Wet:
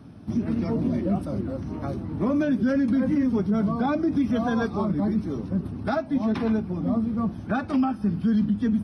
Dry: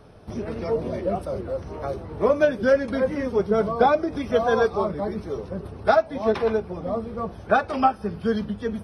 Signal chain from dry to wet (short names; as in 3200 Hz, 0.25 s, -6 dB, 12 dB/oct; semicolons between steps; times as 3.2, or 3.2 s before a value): HPF 91 Hz 12 dB/oct; resonant low shelf 350 Hz +8 dB, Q 3; limiter -13.5 dBFS, peak gain reduction 9.5 dB; gain -2.5 dB